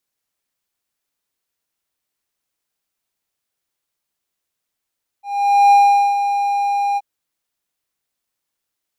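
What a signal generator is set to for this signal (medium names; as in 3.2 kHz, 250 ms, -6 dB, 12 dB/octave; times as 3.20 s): ADSR triangle 807 Hz, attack 484 ms, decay 436 ms, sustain -9 dB, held 1.74 s, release 37 ms -4.5 dBFS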